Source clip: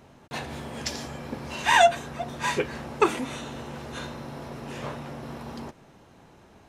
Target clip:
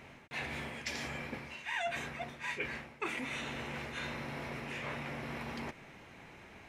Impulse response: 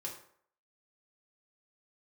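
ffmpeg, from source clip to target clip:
-af "equalizer=f=2.2k:w=1.7:g=14.5,areverse,acompressor=threshold=-35dB:ratio=5,areverse,volume=-2.5dB"

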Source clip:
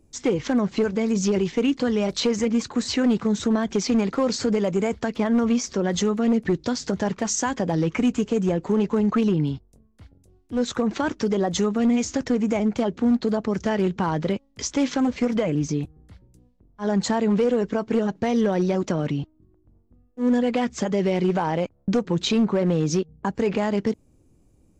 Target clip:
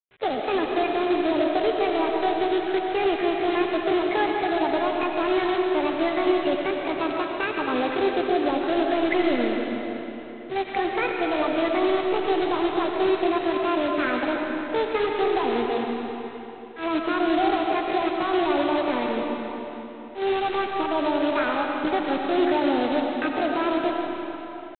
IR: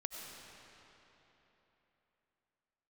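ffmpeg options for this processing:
-filter_complex "[0:a]highpass=f=72:w=0.5412,highpass=f=72:w=1.3066,highshelf=f=1.9k:t=q:w=3:g=-8,asplit=2[a][b];[b]aeval=exprs='sgn(val(0))*max(abs(val(0))-0.00891,0)':c=same,volume=-8dB[c];[a][c]amix=inputs=2:normalize=0,acrusher=bits=6:mix=0:aa=0.000001,asetrate=70004,aresample=44100,atempo=0.629961,aresample=8000,acrusher=bits=2:mode=log:mix=0:aa=0.000001,aresample=44100[d];[1:a]atrim=start_sample=2205[e];[d][e]afir=irnorm=-1:irlink=0,volume=-4dB"

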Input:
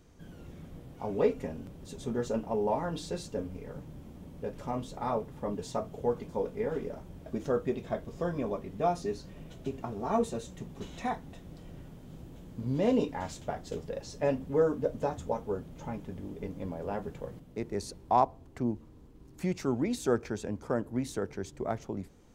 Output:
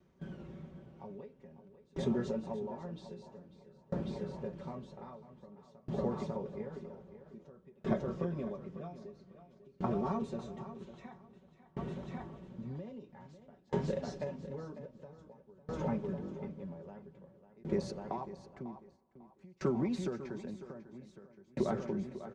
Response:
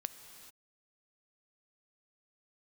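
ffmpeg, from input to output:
-filter_complex "[0:a]highpass=74,bandreject=f=750:w=16,aecho=1:1:5.3:0.65,acompressor=threshold=-30dB:ratio=6,lowpass=6.5k,highshelf=f=2.6k:g=-10.5,aecho=1:1:547|1094|1641|2188|2735|3282|3829:0.473|0.256|0.138|0.0745|0.0402|0.0217|0.0117,agate=range=-13dB:threshold=-49dB:ratio=16:detection=peak,asplit=2[a][b];[1:a]atrim=start_sample=2205,lowpass=7.3k,lowshelf=f=400:g=-8.5[c];[b][c]afir=irnorm=-1:irlink=0,volume=-7.5dB[d];[a][d]amix=inputs=2:normalize=0,acrossover=split=240|3000[e][f][g];[f]acompressor=threshold=-39dB:ratio=2[h];[e][h][g]amix=inputs=3:normalize=0,aeval=exprs='val(0)*pow(10,-30*if(lt(mod(0.51*n/s,1),2*abs(0.51)/1000),1-mod(0.51*n/s,1)/(2*abs(0.51)/1000),(mod(0.51*n/s,1)-2*abs(0.51)/1000)/(1-2*abs(0.51)/1000))/20)':c=same,volume=5.5dB"

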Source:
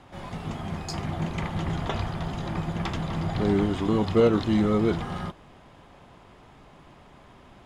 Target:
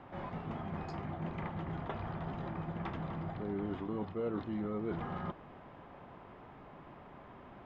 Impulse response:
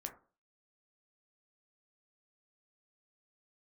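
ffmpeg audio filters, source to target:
-af "lowpass=1.9k,areverse,acompressor=threshold=-35dB:ratio=5,areverse,lowshelf=f=86:g=-9.5"

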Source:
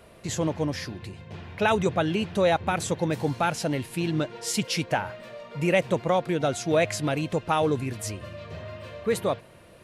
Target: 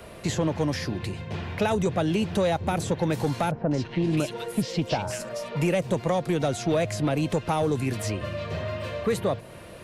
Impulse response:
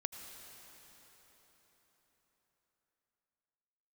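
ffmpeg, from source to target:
-filter_complex "[0:a]acrossover=split=170|860|4800[a][b][c][d];[a]acompressor=threshold=-38dB:ratio=4[e];[b]acompressor=threshold=-31dB:ratio=4[f];[c]acompressor=threshold=-43dB:ratio=4[g];[d]acompressor=threshold=-49dB:ratio=4[h];[e][f][g][h]amix=inputs=4:normalize=0,asoftclip=type=tanh:threshold=-23dB,asettb=1/sr,asplit=3[i][j][k];[i]atrim=end=3.514[l];[j]atrim=start=3.51:end=5.57,asetpts=PTS-STARTPTS,afade=t=in:d=0.004:c=qsin,afade=t=out:st=2.056:d=0.004:c=qsin,acrossover=split=1700|5700[m][n][o];[n]adelay=200[p];[o]adelay=660[q];[m][p][q]amix=inputs=3:normalize=0,atrim=end_sample=90846[r];[k]atrim=start=5.566[s];[l][r]acrossfade=d=0.004:c1=hsin:c2=qsin[t];[t][s]acrossfade=d=0.004:c1=qsin:c2=hsin,volume=8dB"

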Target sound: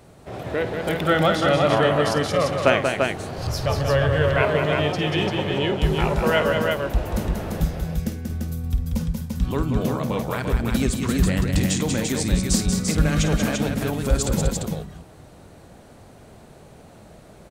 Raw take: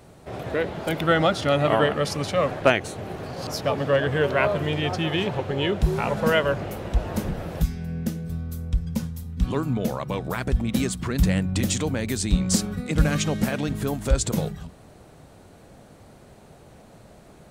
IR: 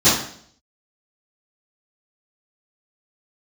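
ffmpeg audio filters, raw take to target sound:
-filter_complex "[0:a]aecho=1:1:51|186|242|343:0.251|0.531|0.119|0.631,asplit=3[a][b][c];[a]afade=t=out:st=3.37:d=0.02[d];[b]asubboost=boost=11.5:cutoff=75,afade=t=in:st=3.37:d=0.02,afade=t=out:st=4.41:d=0.02[e];[c]afade=t=in:st=4.41:d=0.02[f];[d][e][f]amix=inputs=3:normalize=0"

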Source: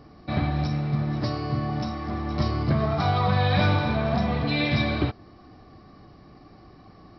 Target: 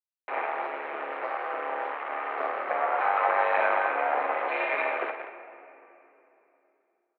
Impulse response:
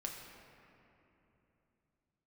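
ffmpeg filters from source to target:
-filter_complex "[0:a]asplit=2[a][b];[b]adelay=174.9,volume=-16dB,highshelf=f=4k:g=-3.94[c];[a][c]amix=inputs=2:normalize=0,aeval=exprs='max(val(0),0)':c=same,acrusher=bits=5:mix=0:aa=0.000001,asplit=2[d][e];[1:a]atrim=start_sample=2205,adelay=50[f];[e][f]afir=irnorm=-1:irlink=0,volume=-5.5dB[g];[d][g]amix=inputs=2:normalize=0,highpass=f=460:t=q:w=0.5412,highpass=f=460:t=q:w=1.307,lowpass=f=2.3k:t=q:w=0.5176,lowpass=f=2.3k:t=q:w=0.7071,lowpass=f=2.3k:t=q:w=1.932,afreqshift=59,volume=5.5dB"

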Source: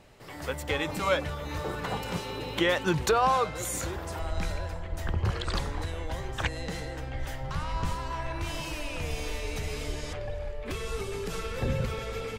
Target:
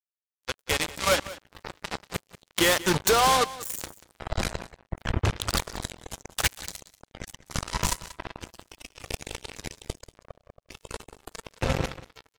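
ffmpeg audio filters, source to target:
-filter_complex "[0:a]asettb=1/sr,asplit=3[a][b][c];[a]atrim=end=5.684[d];[b]atrim=start=5.68:end=8.12,asetpts=PTS-STARTPTS,afade=t=in:d=0.004:c=qsin,afade=t=out:st=2.436:d=0.004:c=qsin,equalizer=f=6.8k:t=o:w=1.5:g=9.5[e];[c]atrim=start=8.116[f];[d][e]acrossfade=d=0.004:c1=hsin:c2=qsin[g];[g][f]acrossfade=d=0.004:c1=qsin:c2=hsin,acrusher=bits=3:mix=0:aa=0.5,asoftclip=type=hard:threshold=-19.5dB,highshelf=f=4.6k:g=8.5,afftdn=nr=14:nf=-49,aecho=1:1:187:0.133,volume=3.5dB"

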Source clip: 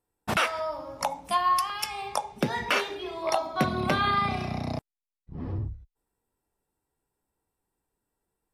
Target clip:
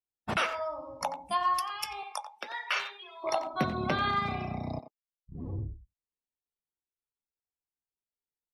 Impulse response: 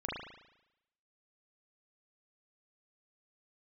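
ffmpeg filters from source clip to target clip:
-filter_complex "[0:a]asettb=1/sr,asplit=3[a][b][c];[a]atrim=end=2.034[d];[b]atrim=start=2.03:end=3.24,asetpts=PTS-STARTPTS,afade=t=in:d=0.004:c=qsin,afade=t=out:st=1.206:d=0.004:c=qsin,highpass=1k[e];[c]atrim=start=3.236[f];[d][e]acrossfade=d=0.004:c1=hsin:c2=qsin[g];[g][f]acrossfade=d=0.004:c1=qsin:c2=hsin,afftdn=nr=20:nf=-41,asplit=2[h][i];[i]adelay=90,highpass=300,lowpass=3.4k,asoftclip=type=hard:threshold=-21dB,volume=-10dB[j];[h][j]amix=inputs=2:normalize=0,volume=-4dB"

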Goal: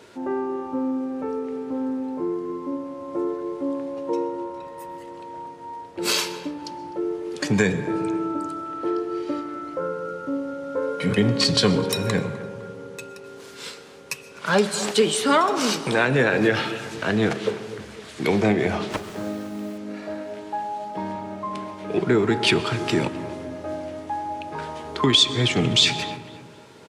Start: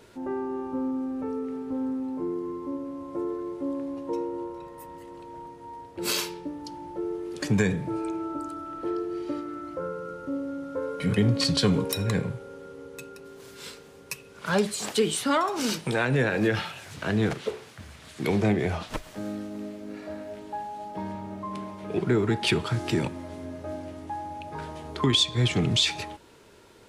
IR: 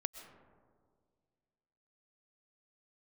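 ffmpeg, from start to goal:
-filter_complex "[0:a]asplit=2[a][b];[b]lowpass=10k[c];[1:a]atrim=start_sample=2205[d];[c][d]afir=irnorm=-1:irlink=0,volume=1.5dB[e];[a][e]amix=inputs=2:normalize=0,asettb=1/sr,asplit=3[f][g][h];[f]atrim=end=18.924[i];[g]atrim=start=18.92:end=19.78,asetpts=PTS-STARTPTS,afade=t=in:d=0.004:c=qsin,afade=t=out:st=0.856:d=0.004:c=qsin,acrusher=bits=7:mix=0:aa=0.5[j];[h]atrim=start=19.776[k];[i][j]acrossfade=d=0.004:c1=hsin:c2=qsin[l];[l][k]acrossfade=d=0.004:c1=qsin:c2=hsin,highpass=f=220:p=1,asplit=2[m][n];[n]adelay=254,lowpass=f=2.2k:p=1,volume=-16dB,asplit=2[o][p];[p]adelay=254,lowpass=f=2.2k:p=1,volume=0.45,asplit=2[q][r];[r]adelay=254,lowpass=f=2.2k:p=1,volume=0.45,asplit=2[s][t];[t]adelay=254,lowpass=f=2.2k:p=1,volume=0.45[u];[m][o][q][s][u]amix=inputs=5:normalize=0"

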